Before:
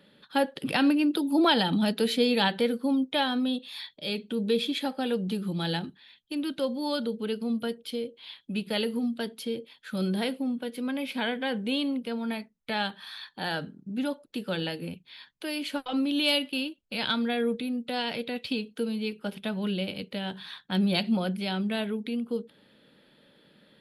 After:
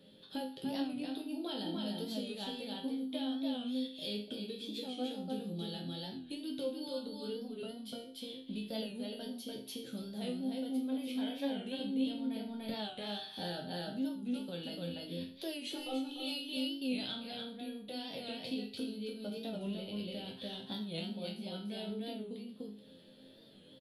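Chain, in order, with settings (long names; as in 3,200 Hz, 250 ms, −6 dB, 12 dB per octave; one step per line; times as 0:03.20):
flat-topped bell 1,500 Hz −10.5 dB
single-tap delay 293 ms −3 dB
downward compressor 5 to 1, threshold −38 dBFS, peak gain reduction 18 dB
resonators tuned to a chord F2 minor, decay 0.49 s
0:11.79–0:12.75: low-shelf EQ 220 Hz +10 dB
0:15.67–0:16.57: comb filter 2.3 ms, depth 58%
wow of a warped record 45 rpm, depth 100 cents
level +15 dB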